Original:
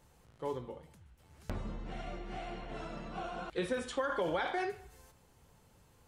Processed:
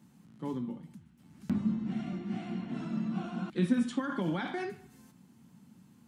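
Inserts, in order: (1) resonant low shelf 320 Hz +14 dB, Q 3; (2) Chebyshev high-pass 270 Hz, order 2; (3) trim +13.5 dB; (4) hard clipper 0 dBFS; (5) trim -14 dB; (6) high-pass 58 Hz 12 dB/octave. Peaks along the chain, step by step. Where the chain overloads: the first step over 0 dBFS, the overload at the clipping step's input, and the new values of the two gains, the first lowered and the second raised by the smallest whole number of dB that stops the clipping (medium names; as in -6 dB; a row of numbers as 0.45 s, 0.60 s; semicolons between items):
-10.5 dBFS, -16.0 dBFS, -2.5 dBFS, -2.5 dBFS, -16.5 dBFS, -16.0 dBFS; nothing clips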